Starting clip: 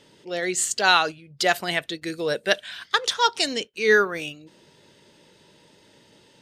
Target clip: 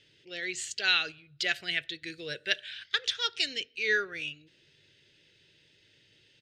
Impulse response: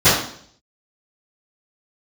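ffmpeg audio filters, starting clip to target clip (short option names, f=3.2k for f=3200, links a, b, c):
-filter_complex "[0:a]firequalizer=gain_entry='entry(120,0);entry(210,-13);entry(340,-6);entry(1000,-21);entry(1500,-2);entry(2500,5);entry(11000,-16)':delay=0.05:min_phase=1,asplit=2[a][b];[1:a]atrim=start_sample=2205,lowpass=4.6k[c];[b][c]afir=irnorm=-1:irlink=0,volume=-48dB[d];[a][d]amix=inputs=2:normalize=0,volume=-6.5dB"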